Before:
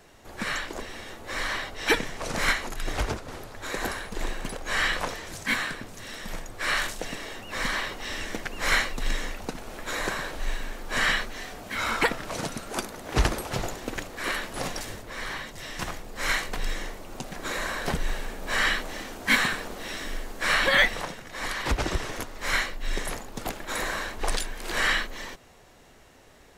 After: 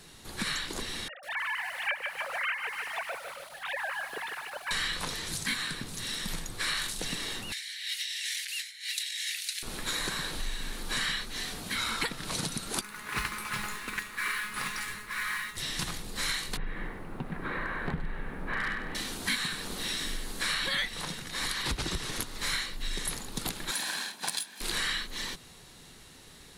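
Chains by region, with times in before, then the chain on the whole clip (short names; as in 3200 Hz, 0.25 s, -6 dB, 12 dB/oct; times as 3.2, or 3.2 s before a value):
1.08–4.71 sine-wave speech + air absorption 260 m + lo-fi delay 0.149 s, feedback 55%, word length 8-bit, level -8 dB
7.52–9.63 steep high-pass 1800 Hz 48 dB/oct + negative-ratio compressor -42 dBFS
12.81–15.57 band shelf 1600 Hz +14.5 dB + resonator 210 Hz, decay 0.31 s, mix 80% + modulation noise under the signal 18 dB
16.57–18.95 LPF 2000 Hz 24 dB/oct + overloaded stage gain 18.5 dB + lo-fi delay 98 ms, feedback 35%, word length 10-bit, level -10.5 dB
23.71–24.61 minimum comb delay 1.2 ms + HPF 210 Hz 24 dB/oct + upward expander, over -42 dBFS
whole clip: fifteen-band EQ 160 Hz +7 dB, 630 Hz -8 dB, 4000 Hz +10 dB, 10000 Hz +12 dB; compressor 4:1, threshold -30 dBFS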